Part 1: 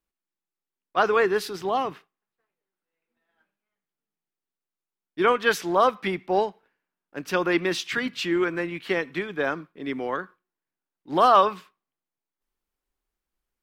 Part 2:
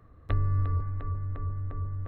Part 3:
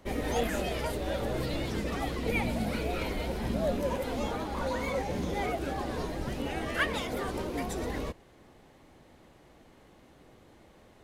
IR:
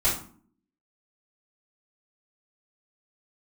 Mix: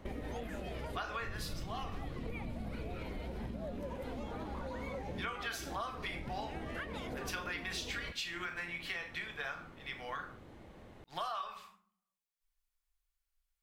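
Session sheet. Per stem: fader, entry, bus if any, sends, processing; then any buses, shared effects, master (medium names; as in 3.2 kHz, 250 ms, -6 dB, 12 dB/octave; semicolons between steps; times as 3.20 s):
-3.5 dB, 0.00 s, send -13 dB, amplifier tone stack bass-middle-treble 10-0-10
-20.0 dB, 0.90 s, send -9.5 dB, whisper effect
+1.0 dB, 0.00 s, no send, tone controls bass +4 dB, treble -7 dB; compression, threshold -39 dBFS, peak gain reduction 15 dB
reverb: on, RT60 0.50 s, pre-delay 3 ms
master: compression 10:1, threshold -36 dBFS, peak gain reduction 15 dB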